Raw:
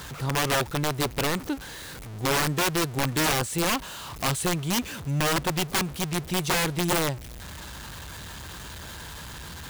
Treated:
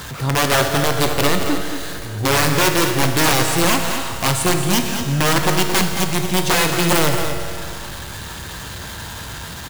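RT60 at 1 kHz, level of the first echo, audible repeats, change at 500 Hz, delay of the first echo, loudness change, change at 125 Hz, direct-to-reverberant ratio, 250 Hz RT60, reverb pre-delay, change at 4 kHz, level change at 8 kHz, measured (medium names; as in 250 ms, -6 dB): 2.3 s, -8.5 dB, 1, +9.5 dB, 224 ms, +8.5 dB, +8.0 dB, 2.5 dB, 2.3 s, 9 ms, +8.5 dB, +8.5 dB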